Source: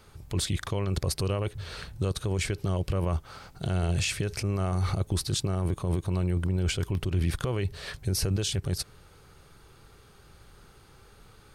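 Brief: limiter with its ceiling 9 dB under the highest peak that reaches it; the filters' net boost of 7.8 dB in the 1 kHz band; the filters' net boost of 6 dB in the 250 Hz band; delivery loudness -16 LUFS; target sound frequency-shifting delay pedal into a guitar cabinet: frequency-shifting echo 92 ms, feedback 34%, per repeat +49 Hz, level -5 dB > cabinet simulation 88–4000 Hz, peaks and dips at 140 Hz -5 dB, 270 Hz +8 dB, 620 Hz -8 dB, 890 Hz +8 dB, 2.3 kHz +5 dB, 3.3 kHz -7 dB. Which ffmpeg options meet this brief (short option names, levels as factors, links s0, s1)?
-filter_complex "[0:a]equalizer=f=250:t=o:g=6,equalizer=f=1000:t=o:g=6,alimiter=limit=0.0708:level=0:latency=1,asplit=5[s0][s1][s2][s3][s4];[s1]adelay=92,afreqshift=49,volume=0.562[s5];[s2]adelay=184,afreqshift=98,volume=0.191[s6];[s3]adelay=276,afreqshift=147,volume=0.0653[s7];[s4]adelay=368,afreqshift=196,volume=0.0221[s8];[s0][s5][s6][s7][s8]amix=inputs=5:normalize=0,highpass=88,equalizer=f=140:t=q:w=4:g=-5,equalizer=f=270:t=q:w=4:g=8,equalizer=f=620:t=q:w=4:g=-8,equalizer=f=890:t=q:w=4:g=8,equalizer=f=2300:t=q:w=4:g=5,equalizer=f=3300:t=q:w=4:g=-7,lowpass=f=4000:w=0.5412,lowpass=f=4000:w=1.3066,volume=6.68"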